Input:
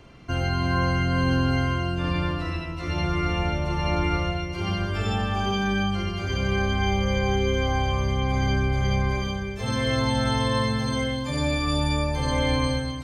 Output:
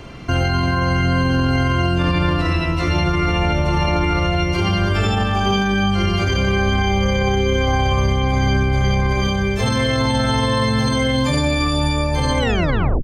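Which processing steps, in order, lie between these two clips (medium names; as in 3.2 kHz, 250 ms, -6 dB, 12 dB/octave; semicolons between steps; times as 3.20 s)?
tape stop on the ending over 0.64 s; loudness maximiser +21.5 dB; trim -8.5 dB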